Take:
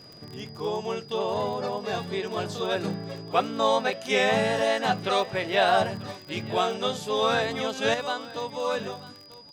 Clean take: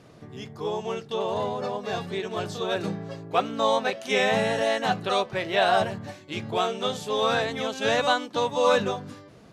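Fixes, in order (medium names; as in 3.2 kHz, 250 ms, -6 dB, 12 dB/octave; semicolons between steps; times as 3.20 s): de-click; band-stop 4.9 kHz, Q 30; inverse comb 940 ms -18.5 dB; trim 0 dB, from 7.94 s +7.5 dB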